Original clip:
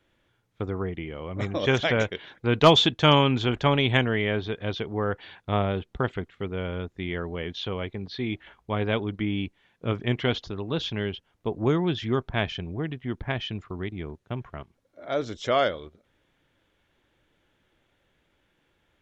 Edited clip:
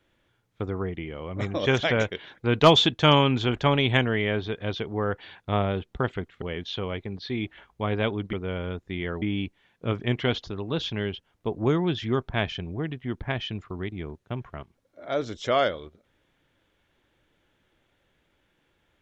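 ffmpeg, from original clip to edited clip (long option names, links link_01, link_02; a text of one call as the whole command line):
ffmpeg -i in.wav -filter_complex "[0:a]asplit=4[link_01][link_02][link_03][link_04];[link_01]atrim=end=6.422[link_05];[link_02]atrim=start=7.308:end=9.222[link_06];[link_03]atrim=start=6.418:end=7.312[link_07];[link_04]atrim=start=9.218[link_08];[link_05][link_06]acrossfade=duration=0.004:curve1=hsin:curve2=hsin[link_09];[link_09][link_07]acrossfade=duration=0.004:curve1=hsin:curve2=hsin[link_10];[link_10][link_08]acrossfade=duration=0.004:curve1=hsin:curve2=hsin" out.wav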